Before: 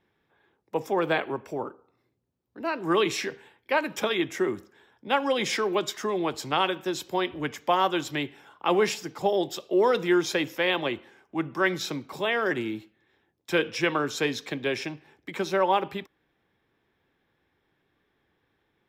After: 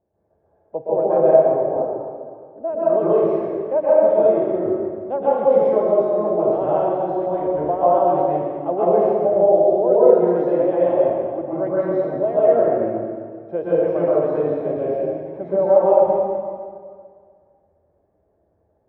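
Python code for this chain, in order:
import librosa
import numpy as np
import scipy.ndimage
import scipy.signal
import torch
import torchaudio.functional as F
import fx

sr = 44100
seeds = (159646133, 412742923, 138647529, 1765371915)

y = fx.lowpass_res(x, sr, hz=630.0, q=7.4)
y = fx.peak_eq(y, sr, hz=66.0, db=11.0, octaves=1.1)
y = fx.rev_plate(y, sr, seeds[0], rt60_s=2.0, hf_ratio=0.8, predelay_ms=110, drr_db=-9.5)
y = y * 10.0 ** (-7.0 / 20.0)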